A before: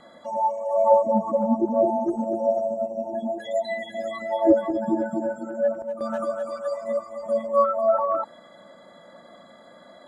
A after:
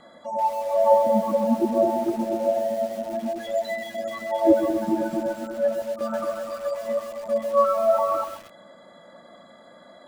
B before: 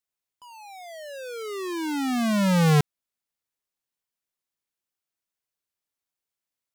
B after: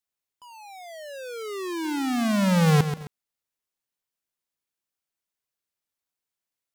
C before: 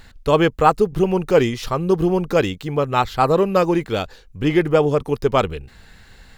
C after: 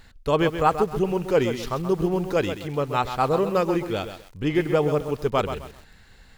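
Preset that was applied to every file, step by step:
lo-fi delay 0.131 s, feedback 35%, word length 6-bit, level -9 dB; match loudness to -24 LUFS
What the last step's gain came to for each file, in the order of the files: 0.0, -0.5, -5.5 dB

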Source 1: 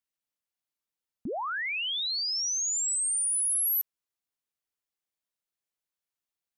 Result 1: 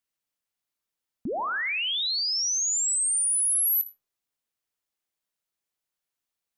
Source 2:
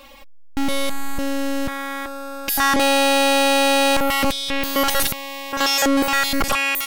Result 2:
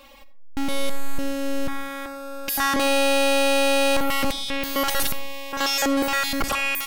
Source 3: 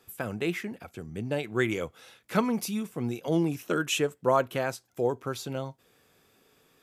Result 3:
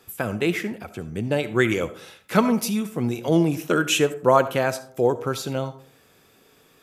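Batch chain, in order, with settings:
digital reverb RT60 0.56 s, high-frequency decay 0.4×, pre-delay 25 ms, DRR 13.5 dB; match loudness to -23 LUFS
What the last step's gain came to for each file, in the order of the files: +3.0, -4.5, +7.0 dB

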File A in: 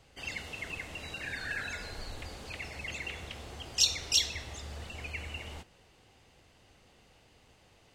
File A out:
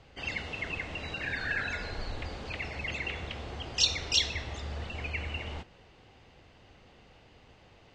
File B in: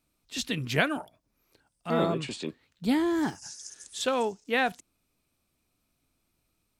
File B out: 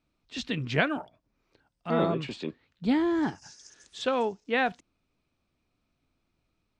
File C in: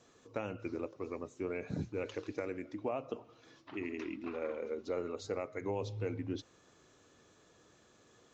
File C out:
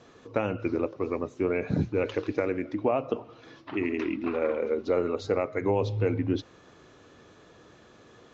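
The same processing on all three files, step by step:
air absorption 140 m; normalise peaks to -12 dBFS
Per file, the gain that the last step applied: +5.5, +1.0, +11.5 dB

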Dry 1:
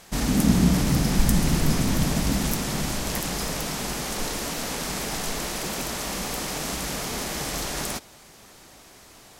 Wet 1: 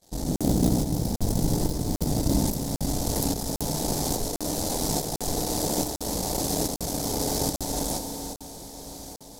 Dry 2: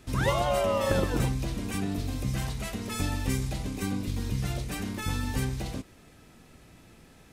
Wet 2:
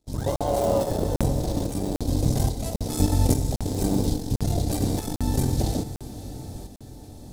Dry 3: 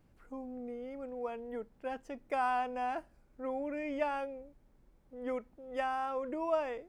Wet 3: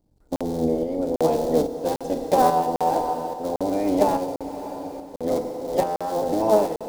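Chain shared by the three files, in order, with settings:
cycle switcher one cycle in 3, muted; dynamic EQ 3900 Hz, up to -4 dB, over -45 dBFS, Q 0.74; gate -52 dBFS, range -17 dB; in parallel at -5 dB: wrapped overs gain 12 dB; on the sum: vocal rider within 4 dB 2 s; band shelf 1800 Hz -14.5 dB; diffused feedback echo 0.578 s, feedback 63%, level -13 dB; FDN reverb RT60 2.1 s, low-frequency decay 0.75×, high-frequency decay 1×, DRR 6 dB; tremolo saw up 1.2 Hz, depth 50%; crackling interface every 0.80 s, samples 2048, zero, from 0.36; normalise peaks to -6 dBFS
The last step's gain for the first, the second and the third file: -0.5, +5.0, +15.0 dB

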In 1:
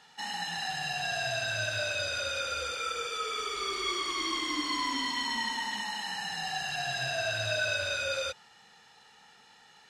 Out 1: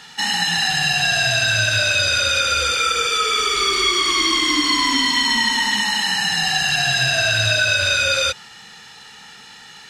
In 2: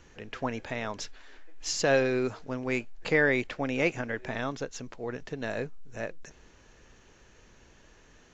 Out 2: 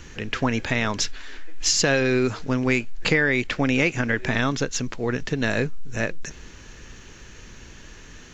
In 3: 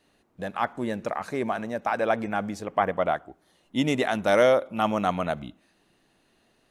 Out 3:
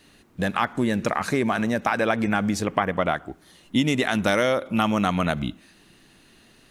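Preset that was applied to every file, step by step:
bell 660 Hz -8.5 dB 1.6 oct; compressor 5:1, threshold -32 dBFS; normalise peaks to -6 dBFS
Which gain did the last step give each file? +18.5, +15.0, +13.5 dB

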